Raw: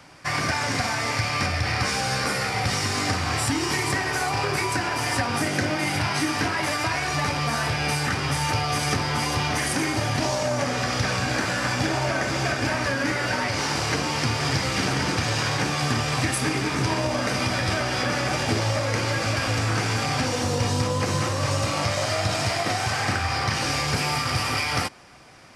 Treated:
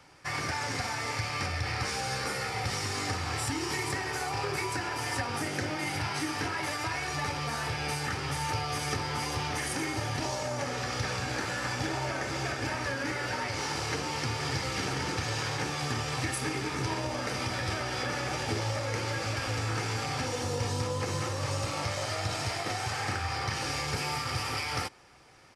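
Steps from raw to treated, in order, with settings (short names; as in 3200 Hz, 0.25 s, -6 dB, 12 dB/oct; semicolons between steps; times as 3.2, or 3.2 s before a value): comb 2.3 ms, depth 33%; gain -8 dB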